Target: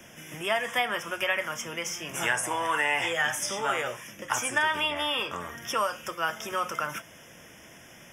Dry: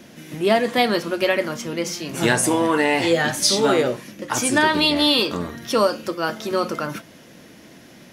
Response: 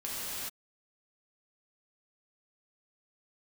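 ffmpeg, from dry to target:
-filter_complex "[0:a]equalizer=frequency=260:width=0.78:gain=-11.5,acrossover=split=150|740|2300[link_01][link_02][link_03][link_04];[link_01]acompressor=threshold=-53dB:ratio=4[link_05];[link_02]acompressor=threshold=-40dB:ratio=4[link_06];[link_03]acompressor=threshold=-24dB:ratio=4[link_07];[link_04]acompressor=threshold=-32dB:ratio=4[link_08];[link_05][link_06][link_07][link_08]amix=inputs=4:normalize=0,asuperstop=centerf=4200:order=8:qfactor=2.7"

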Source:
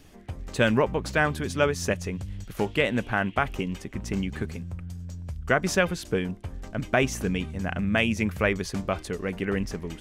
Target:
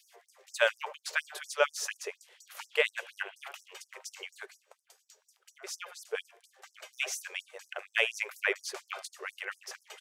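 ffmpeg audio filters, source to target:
ffmpeg -i in.wav -filter_complex "[0:a]highpass=110,asplit=3[link_01][link_02][link_03];[link_01]afade=type=out:start_time=4.45:duration=0.02[link_04];[link_02]acompressor=threshold=-44dB:ratio=1.5,afade=type=in:start_time=4.45:duration=0.02,afade=type=out:start_time=6.13:duration=0.02[link_05];[link_03]afade=type=in:start_time=6.13:duration=0.02[link_06];[link_04][link_05][link_06]amix=inputs=3:normalize=0,asplit=2[link_07][link_08];[link_08]adelay=80,lowpass=frequency=2000:poles=1,volume=-20dB,asplit=2[link_09][link_10];[link_10]adelay=80,lowpass=frequency=2000:poles=1,volume=0.39,asplit=2[link_11][link_12];[link_12]adelay=80,lowpass=frequency=2000:poles=1,volume=0.39[link_13];[link_09][link_11][link_13]amix=inputs=3:normalize=0[link_14];[link_07][link_14]amix=inputs=2:normalize=0,afftfilt=real='re*gte(b*sr/1024,370*pow(5200/370,0.5+0.5*sin(2*PI*4.2*pts/sr)))':imag='im*gte(b*sr/1024,370*pow(5200/370,0.5+0.5*sin(2*PI*4.2*pts/sr)))':win_size=1024:overlap=0.75,volume=-1.5dB" out.wav

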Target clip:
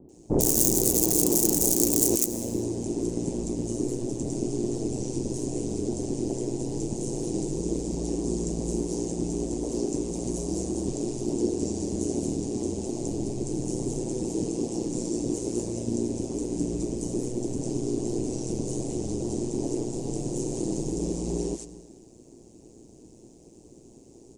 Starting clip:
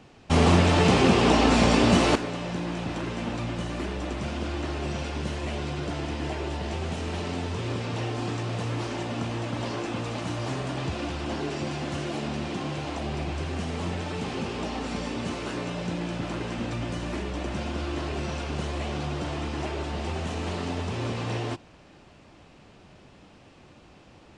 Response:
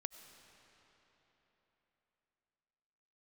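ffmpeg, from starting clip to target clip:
-filter_complex "[0:a]aeval=exprs='(mod(4.47*val(0)+1,2)-1)/4.47':channel_layout=same,acrossover=split=1300[link_01][link_02];[link_02]adelay=90[link_03];[link_01][link_03]amix=inputs=2:normalize=0,asplit=2[link_04][link_05];[1:a]atrim=start_sample=2205,afade=type=out:start_time=0.45:duration=0.01,atrim=end_sample=20286,lowshelf=frequency=230:gain=-8[link_06];[link_05][link_06]afir=irnorm=-1:irlink=0,volume=9.5dB[link_07];[link_04][link_07]amix=inputs=2:normalize=0,asplit=2[link_08][link_09];[link_09]asetrate=37084,aresample=44100,atempo=1.18921,volume=-9dB[link_10];[link_08][link_10]amix=inputs=2:normalize=0,alimiter=limit=-4dB:level=0:latency=1:release=152,aeval=exprs='val(0)*sin(2*PI*59*n/s)':channel_layout=same,firequalizer=gain_entry='entry(180,0);entry(340,8);entry(590,-7);entry(860,-11);entry(1300,-26);entry(1900,-24);entry(3300,-19);entry(6600,10)':delay=0.05:min_phase=1,volume=-5dB"

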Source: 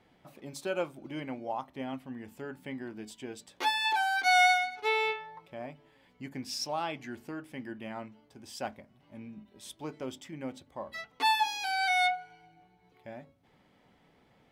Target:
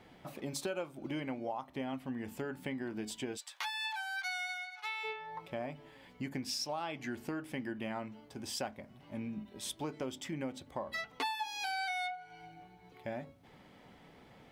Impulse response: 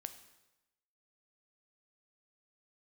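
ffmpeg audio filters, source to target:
-filter_complex "[0:a]acompressor=threshold=-42dB:ratio=6,asplit=3[link_01][link_02][link_03];[link_01]afade=type=out:start_time=3.36:duration=0.02[link_04];[link_02]highpass=frequency=930:width=0.5412,highpass=frequency=930:width=1.3066,afade=type=in:start_time=3.36:duration=0.02,afade=type=out:start_time=5.03:duration=0.02[link_05];[link_03]afade=type=in:start_time=5.03:duration=0.02[link_06];[link_04][link_05][link_06]amix=inputs=3:normalize=0,volume=6.5dB"

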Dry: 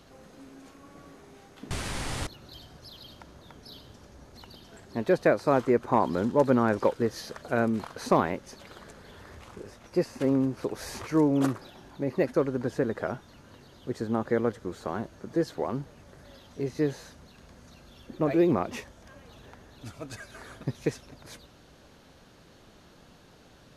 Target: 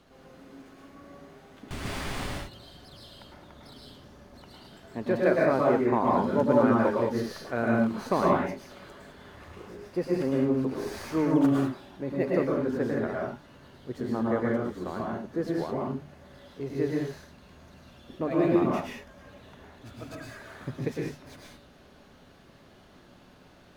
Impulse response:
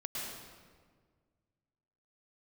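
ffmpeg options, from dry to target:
-filter_complex "[0:a]bandreject=frequency=50:width_type=h:width=6,bandreject=frequency=100:width_type=h:width=6,bandreject=frequency=150:width_type=h:width=6,acrossover=split=3900[link_01][link_02];[link_02]aeval=exprs='max(val(0),0)':channel_layout=same[link_03];[link_01][link_03]amix=inputs=2:normalize=0[link_04];[1:a]atrim=start_sample=2205,afade=type=out:start_time=0.27:duration=0.01,atrim=end_sample=12348[link_05];[link_04][link_05]afir=irnorm=-1:irlink=0"

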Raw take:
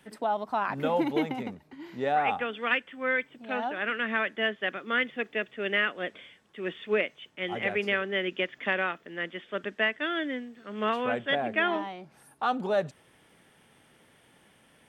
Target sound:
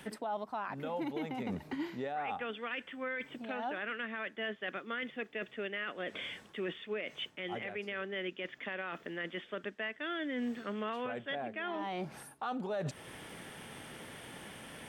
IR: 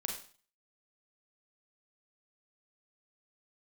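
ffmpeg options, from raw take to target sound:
-af "areverse,acompressor=threshold=-41dB:ratio=12,areverse,alimiter=level_in=17dB:limit=-24dB:level=0:latency=1:release=206,volume=-17dB,volume=12dB"

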